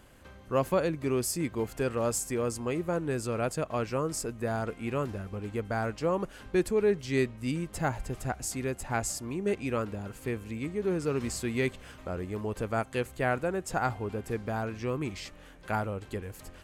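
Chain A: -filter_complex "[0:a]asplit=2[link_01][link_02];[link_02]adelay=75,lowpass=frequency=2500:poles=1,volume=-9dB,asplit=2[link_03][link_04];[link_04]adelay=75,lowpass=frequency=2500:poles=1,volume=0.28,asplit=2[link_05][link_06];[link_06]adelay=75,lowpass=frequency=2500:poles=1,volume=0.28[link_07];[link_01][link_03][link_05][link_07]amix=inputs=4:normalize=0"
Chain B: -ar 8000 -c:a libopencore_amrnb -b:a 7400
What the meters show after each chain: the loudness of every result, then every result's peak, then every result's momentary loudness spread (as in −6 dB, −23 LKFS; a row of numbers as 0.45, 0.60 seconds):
−31.5, −33.0 LKFS; −13.5, −13.5 dBFS; 8, 8 LU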